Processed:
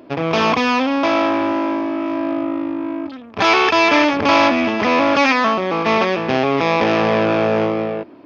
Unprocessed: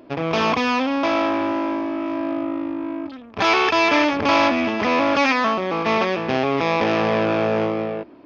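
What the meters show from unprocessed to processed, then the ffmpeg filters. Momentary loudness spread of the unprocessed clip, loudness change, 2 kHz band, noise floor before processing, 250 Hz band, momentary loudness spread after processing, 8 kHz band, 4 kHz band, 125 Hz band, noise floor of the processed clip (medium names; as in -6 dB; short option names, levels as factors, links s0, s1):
9 LU, +3.5 dB, +3.5 dB, -41 dBFS, +3.5 dB, 9 LU, no reading, +3.5 dB, +3.0 dB, -38 dBFS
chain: -af "highpass=69,volume=1.5"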